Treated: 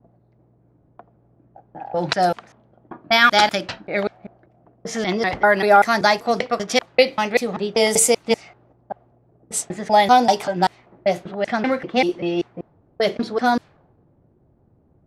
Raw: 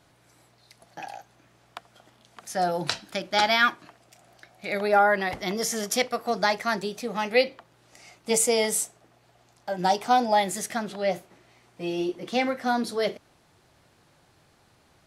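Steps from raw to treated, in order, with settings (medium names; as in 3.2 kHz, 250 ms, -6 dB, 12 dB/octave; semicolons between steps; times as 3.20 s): slices played last to first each 194 ms, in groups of 5; level-controlled noise filter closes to 370 Hz, open at -21.5 dBFS; trim +7 dB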